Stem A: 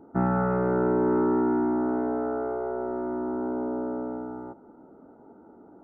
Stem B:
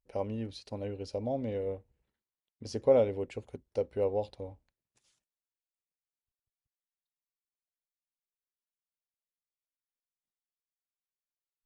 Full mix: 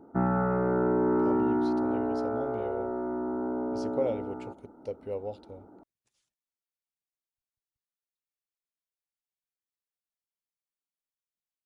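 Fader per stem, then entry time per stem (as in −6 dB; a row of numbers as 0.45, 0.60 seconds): −2.0, −5.0 decibels; 0.00, 1.10 seconds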